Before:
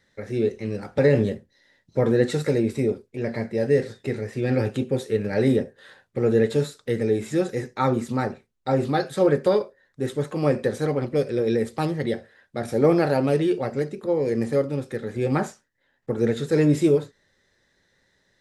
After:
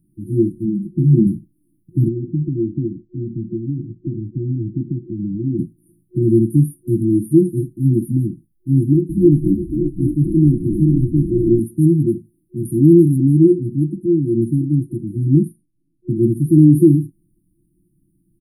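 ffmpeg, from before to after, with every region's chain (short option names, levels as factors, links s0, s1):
-filter_complex "[0:a]asettb=1/sr,asplit=3[s0][s1][s2];[s0]atrim=end=0.654[s3];[s1]atrim=start=0.65:end=1.27,asetpts=PTS-STARTPTS,afade=t=in:d=0.004:c=qsin,afade=t=out:st=0.616:d=0.004:c=qsin,lowpass=f=2700:p=1,lowshelf=f=95:g=-11,aecho=1:1:5.2:0.86,atrim=end_sample=27342[s4];[s2]atrim=start=1.266[s5];[s3][s4]acrossfade=d=0.004:c1=hsin:c2=qsin[s6];[s6][s5]acrossfade=d=0.004:c1=qsin:c2=hsin,asettb=1/sr,asplit=3[s7][s8][s9];[s7]atrim=end=2.084[s10];[s8]atrim=start=2.08:end=5.59,asetpts=PTS-STARTPTS,afade=t=in:d=0.004:c=qsin,afade=t=out:st=3.506:d=0.004:c=qsin,lowpass=f=1300:w=0.5412,lowpass=f=1300:w=1.3066,acompressor=threshold=0.0398:ratio=3:attack=3.2:release=140:knee=1:detection=peak[s11];[s9]atrim=start=5.586[s12];[s10][s11]acrossfade=d=0.004:c1=hsin:c2=qsin[s13];[s13][s12]acrossfade=d=0.004:c1=qsin:c2=hsin,asettb=1/sr,asplit=3[s14][s15][s16];[s14]atrim=end=8.834[s17];[s15]atrim=start=8.83:end=11.6,asetpts=PTS-STARTPTS,afade=t=in:d=0.004:c=qsin,afade=t=out:st=2.766:d=0.004:c=qsin,acrossover=split=3200[s18][s19];[s19]acompressor=threshold=0.002:ratio=4:attack=1:release=60[s20];[s18][s20]amix=inputs=2:normalize=0,asoftclip=type=hard:threshold=0.224,asplit=8[s21][s22][s23][s24][s25][s26][s27][s28];[s22]adelay=260,afreqshift=-63,volume=0.398[s29];[s23]adelay=520,afreqshift=-126,volume=0.224[s30];[s24]adelay=780,afreqshift=-189,volume=0.124[s31];[s25]adelay=1040,afreqshift=-252,volume=0.07[s32];[s26]adelay=1300,afreqshift=-315,volume=0.0394[s33];[s27]adelay=1560,afreqshift=-378,volume=0.0219[s34];[s28]adelay=1820,afreqshift=-441,volume=0.0123[s35];[s21][s29][s30][s31][s32][s33][s34][s35]amix=inputs=8:normalize=0,atrim=end_sample=122157[s36];[s16]atrim=start=11.596[s37];[s17][s36]acrossfade=d=0.004:c1=hsin:c2=qsin[s38];[s38][s37]acrossfade=d=0.004:c1=qsin:c2=hsin,asettb=1/sr,asplit=3[s39][s40][s41];[s39]atrim=end=13.164[s42];[s40]atrim=start=13.16:end=16.23,asetpts=PTS-STARTPTS,afade=t=in:d=0.004:c=qsin,afade=t=out:st=3.066:d=0.004:c=qsin,lowpass=5500,aemphasis=mode=production:type=cd[s43];[s41]atrim=start=16.226[s44];[s42][s43]acrossfade=d=0.004:c1=hsin:c2=qsin[s45];[s45][s44]acrossfade=d=0.004:c1=qsin:c2=hsin,afftfilt=real='re*(1-between(b*sr/4096,360,9100))':imag='im*(1-between(b*sr/4096,360,9100))':win_size=4096:overlap=0.75,aecho=1:1:6.2:0.64,alimiter=level_in=3.55:limit=0.891:release=50:level=0:latency=1,volume=0.891"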